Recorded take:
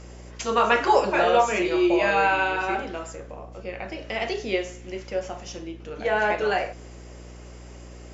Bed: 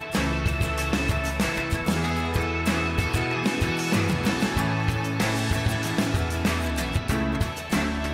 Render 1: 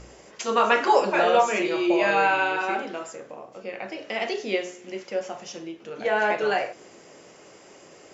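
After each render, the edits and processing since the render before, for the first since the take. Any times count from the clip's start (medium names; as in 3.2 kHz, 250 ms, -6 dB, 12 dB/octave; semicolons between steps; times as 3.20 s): de-hum 60 Hz, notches 6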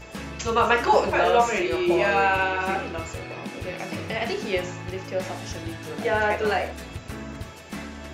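add bed -11 dB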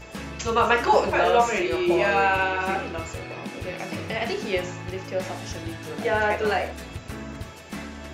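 no audible change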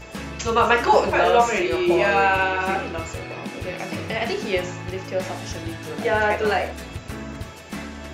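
trim +2.5 dB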